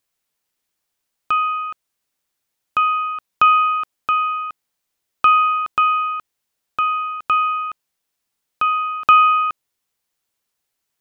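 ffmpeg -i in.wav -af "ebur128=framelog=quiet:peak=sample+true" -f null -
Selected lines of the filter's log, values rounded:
Integrated loudness:
  I:         -17.7 LUFS
  Threshold: -28.2 LUFS
Loudness range:
  LRA:         4.2 LU
  Threshold: -39.5 LUFS
  LRA low:   -22.0 LUFS
  LRA high:  -17.8 LUFS
Sample peak:
  Peak:       -3.4 dBFS
True peak:
  Peak:       -3.4 dBFS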